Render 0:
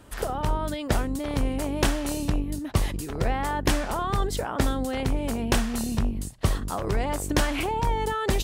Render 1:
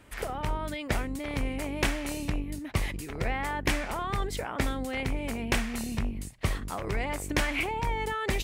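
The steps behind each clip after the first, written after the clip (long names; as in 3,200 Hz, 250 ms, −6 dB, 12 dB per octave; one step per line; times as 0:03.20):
parametric band 2,200 Hz +10.5 dB 0.61 octaves
level −5.5 dB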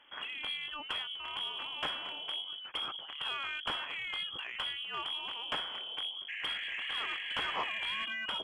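sound drawn into the spectrogram noise, 0:06.28–0:08.06, 240–1,700 Hz −34 dBFS
voice inversion scrambler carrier 3,300 Hz
mid-hump overdrive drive 15 dB, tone 1,000 Hz, clips at −9.5 dBFS
level −8 dB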